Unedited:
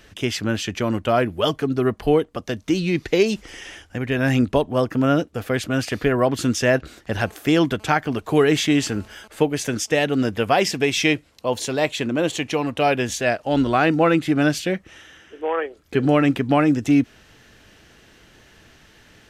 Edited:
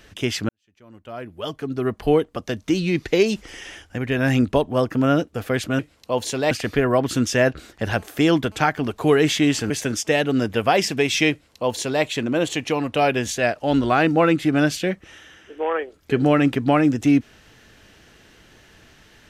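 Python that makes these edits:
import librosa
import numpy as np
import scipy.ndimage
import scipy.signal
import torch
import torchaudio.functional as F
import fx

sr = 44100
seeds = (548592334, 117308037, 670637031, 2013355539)

y = fx.edit(x, sr, fx.fade_in_span(start_s=0.49, length_s=1.63, curve='qua'),
    fx.cut(start_s=8.98, length_s=0.55),
    fx.duplicate(start_s=11.14, length_s=0.72, to_s=5.79), tone=tone)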